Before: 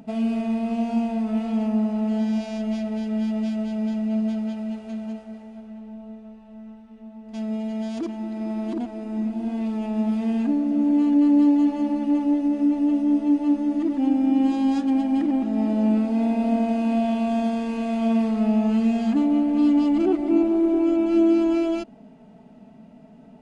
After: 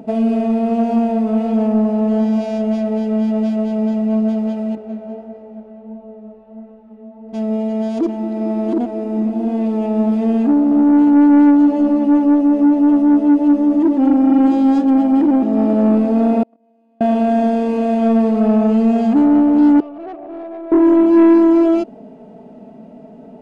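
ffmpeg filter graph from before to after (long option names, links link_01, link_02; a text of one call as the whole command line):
ffmpeg -i in.wav -filter_complex "[0:a]asettb=1/sr,asplit=3[link_01][link_02][link_03];[link_01]atrim=end=4.754[link_04];[link_02]atrim=start=4.75:end=7.33,asetpts=PTS-STARTPTS,afade=type=in:duration=0.004:curve=qsin,afade=type=out:start_time=2.576:duration=0.004:curve=qsin,lowpass=frequency=1700:poles=1,flanger=delay=20:depth=5.8:speed=1.5[link_05];[link_03]atrim=start=7.326[link_06];[link_04][link_05]acrossfade=duration=0.004:curve1=hsin:curve2=qsin[link_07];[link_07][link_06]acrossfade=duration=0.004:curve1=qsin:curve2=hsin,asettb=1/sr,asplit=3[link_08][link_09][link_10];[link_08]atrim=end=16.434[link_11];[link_09]atrim=start=16.43:end=17.01,asetpts=PTS-STARTPTS,afade=type=in:duration=0.004:curve=qsin,afade=type=out:start_time=0.576:duration=0.004:curve=qsin,agate=range=-57dB:threshold=-14dB:ratio=16:release=100:detection=peak,highpass=220,acompressor=mode=upward:threshold=-52dB:ratio=2.5:attack=3.2:release=140:knee=2.83:detection=peak[link_12];[link_10]atrim=start=17.006[link_13];[link_11][link_12]acrossfade=duration=0.004:curve1=hsin:curve2=qsin[link_14];[link_14][link_13]acrossfade=duration=0.004:curve1=qsin:curve2=hsin,asettb=1/sr,asplit=3[link_15][link_16][link_17];[link_15]atrim=end=19.804[link_18];[link_16]atrim=start=19.8:end=20.72,asetpts=PTS-STARTPTS,afade=type=in:duration=0.004:curve=qsin,afade=type=out:start_time=0.916:duration=0.004:curve=qsin,asplit=3[link_19][link_20][link_21];[link_19]bandpass=frequency=730:width_type=q:width=8,volume=0dB[link_22];[link_20]bandpass=frequency=1090:width_type=q:width=8,volume=-6dB[link_23];[link_21]bandpass=frequency=2440:width_type=q:width=8,volume=-9dB[link_24];[link_22][link_23][link_24]amix=inputs=3:normalize=0,aeval=exprs='(tanh(79.4*val(0)+0.15)-tanh(0.15))/79.4':channel_layout=same[link_25];[link_17]atrim=start=20.716[link_26];[link_18][link_25]acrossfade=duration=0.004:curve1=hsin:curve2=qsin[link_27];[link_27][link_26]acrossfade=duration=0.004:curve1=qsin:curve2=hsin,equalizer=frequency=460:width=0.67:gain=14,acontrast=63,volume=-5dB" out.wav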